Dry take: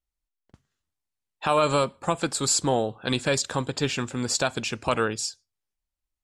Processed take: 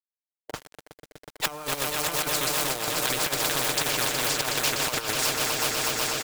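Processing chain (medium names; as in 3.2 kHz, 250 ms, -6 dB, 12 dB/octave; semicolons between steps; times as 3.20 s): low-pass that closes with the level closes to 780 Hz, closed at -18.5 dBFS; resonant low shelf 330 Hz -12 dB, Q 1.5; comb 6.6 ms, depth 60%; echo with a slow build-up 123 ms, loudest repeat 5, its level -12 dB; companded quantiser 6-bit; rotary cabinet horn 1.2 Hz, later 5 Hz, at 2.00 s; compressor with a negative ratio -28 dBFS, ratio -0.5; spectrum-flattening compressor 4:1; trim +5 dB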